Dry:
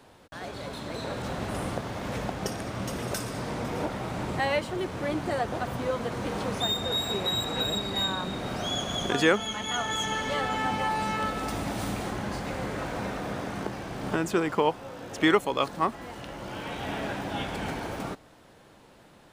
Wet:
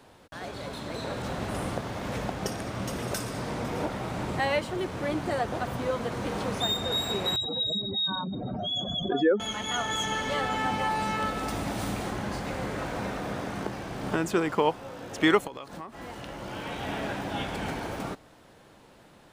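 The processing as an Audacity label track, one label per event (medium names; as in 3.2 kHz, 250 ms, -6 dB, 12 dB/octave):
7.360000	9.400000	spectral contrast enhancement exponent 2.7
15.470000	16.000000	compression 8:1, threshold -36 dBFS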